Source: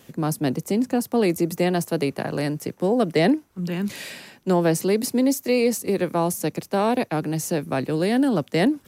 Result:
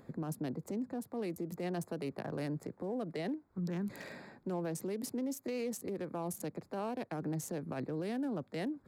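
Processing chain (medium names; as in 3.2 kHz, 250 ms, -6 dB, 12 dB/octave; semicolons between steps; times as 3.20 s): local Wiener filter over 15 samples; compression 5:1, threshold -29 dBFS, peak gain reduction 13 dB; peak limiter -27 dBFS, peak gain reduction 8.5 dB; upward compressor, threshold -56 dBFS; trim -3.5 dB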